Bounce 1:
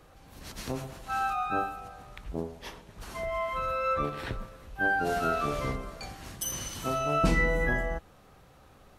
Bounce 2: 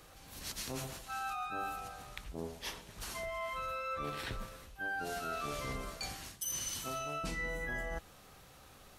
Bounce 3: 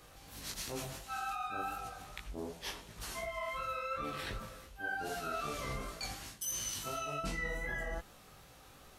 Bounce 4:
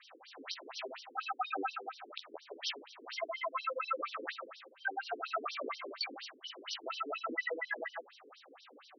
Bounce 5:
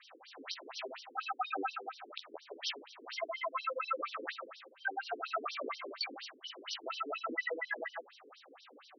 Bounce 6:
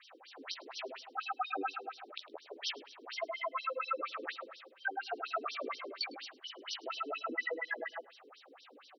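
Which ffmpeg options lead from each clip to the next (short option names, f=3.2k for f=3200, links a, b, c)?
-af "highshelf=f=2.2k:g=11.5,areverse,acompressor=threshold=-33dB:ratio=6,areverse,volume=-3.5dB"
-af "flanger=delay=17.5:depth=4:speed=2.7,volume=3dB"
-af "bandreject=f=3.4k:w=19,afftfilt=real='re*between(b*sr/1024,330*pow(4300/330,0.5+0.5*sin(2*PI*4.2*pts/sr))/1.41,330*pow(4300/330,0.5+0.5*sin(2*PI*4.2*pts/sr))*1.41)':imag='im*between(b*sr/1024,330*pow(4300/330,0.5+0.5*sin(2*PI*4.2*pts/sr))/1.41,330*pow(4300/330,0.5+0.5*sin(2*PI*4.2*pts/sr))*1.41)':win_size=1024:overlap=0.75,volume=8.5dB"
-af anull
-af "aecho=1:1:105|210:0.075|0.021"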